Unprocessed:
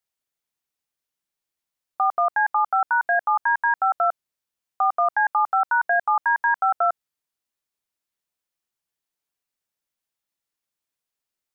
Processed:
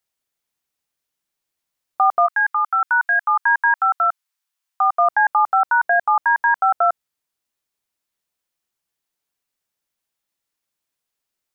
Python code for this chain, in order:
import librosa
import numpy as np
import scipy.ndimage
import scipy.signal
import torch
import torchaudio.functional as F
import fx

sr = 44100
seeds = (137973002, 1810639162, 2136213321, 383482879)

y = fx.highpass(x, sr, hz=fx.line((2.26, 1200.0), (4.97, 760.0)), slope=24, at=(2.26, 4.97), fade=0.02)
y = fx.rider(y, sr, range_db=10, speed_s=2.0)
y = y * librosa.db_to_amplitude(5.0)